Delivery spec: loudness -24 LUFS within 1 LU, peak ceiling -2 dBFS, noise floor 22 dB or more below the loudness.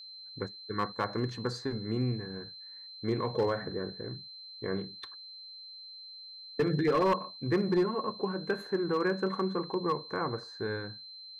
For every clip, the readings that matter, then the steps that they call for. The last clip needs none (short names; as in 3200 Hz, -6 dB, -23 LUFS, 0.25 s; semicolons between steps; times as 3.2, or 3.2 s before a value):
clipped 0.4%; flat tops at -21.0 dBFS; steady tone 4100 Hz; tone level -45 dBFS; loudness -32.5 LUFS; peak -21.0 dBFS; loudness target -24.0 LUFS
-> clip repair -21 dBFS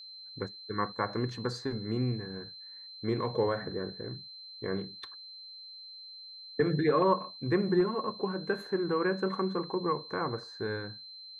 clipped 0.0%; steady tone 4100 Hz; tone level -45 dBFS
-> notch 4100 Hz, Q 30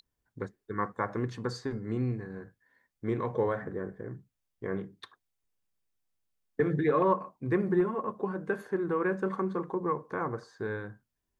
steady tone none; loudness -32.0 LUFS; peak -14.0 dBFS; loudness target -24.0 LUFS
-> gain +8 dB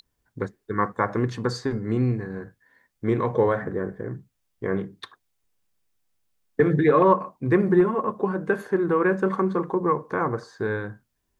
loudness -24.0 LUFS; peak -6.0 dBFS; noise floor -76 dBFS